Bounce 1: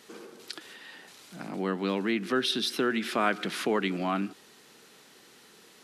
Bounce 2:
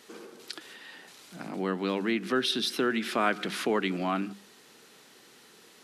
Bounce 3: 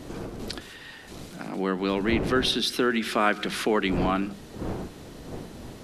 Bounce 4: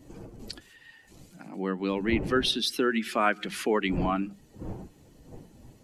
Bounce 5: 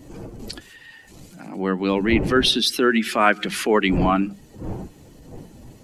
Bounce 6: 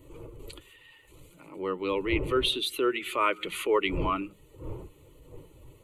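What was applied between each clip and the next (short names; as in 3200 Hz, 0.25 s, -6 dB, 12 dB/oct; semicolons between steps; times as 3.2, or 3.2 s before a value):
notches 50/100/150/200 Hz
wind noise 360 Hz -40 dBFS; gain +3.5 dB
per-bin expansion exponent 1.5
transient shaper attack -5 dB, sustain 0 dB; gain +9 dB
fixed phaser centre 1100 Hz, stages 8; gain -5 dB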